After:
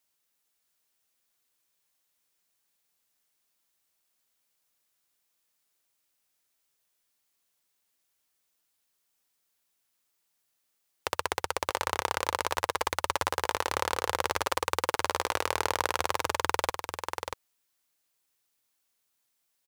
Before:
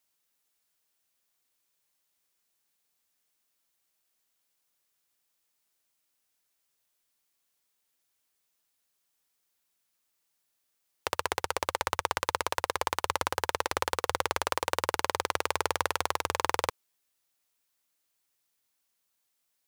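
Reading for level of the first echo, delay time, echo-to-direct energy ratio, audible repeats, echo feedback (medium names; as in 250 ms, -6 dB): -6.5 dB, 639 ms, -6.5 dB, 1, no regular repeats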